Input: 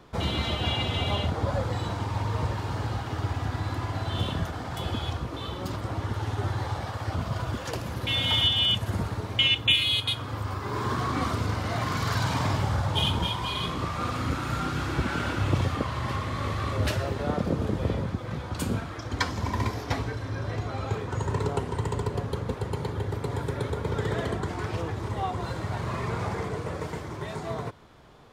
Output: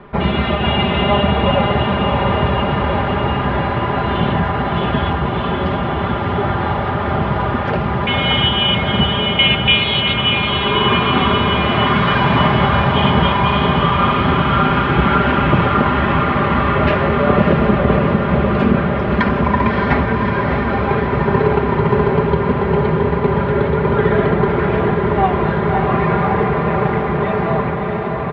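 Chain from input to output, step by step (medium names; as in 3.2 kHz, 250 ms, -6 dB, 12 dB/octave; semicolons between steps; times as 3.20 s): low-pass 2.6 kHz 24 dB/octave; hum notches 50/100 Hz; comb 5 ms, depth 64%; on a send: echo that smears into a reverb 616 ms, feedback 74%, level -4 dB; on the sum: loudness maximiser +13 dB; trim -1 dB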